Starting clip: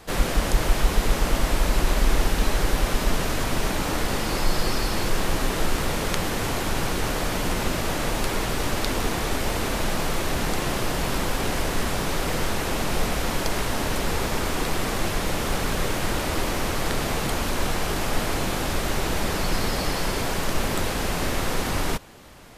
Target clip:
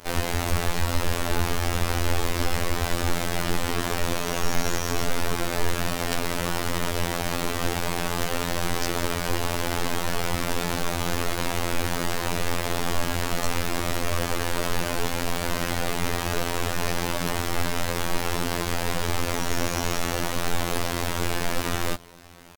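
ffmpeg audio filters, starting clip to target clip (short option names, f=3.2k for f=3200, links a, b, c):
-af "asetrate=57191,aresample=44100,atempo=0.771105,afftfilt=real='hypot(re,im)*cos(PI*b)':imag='0':win_size=2048:overlap=0.75,volume=2.5dB"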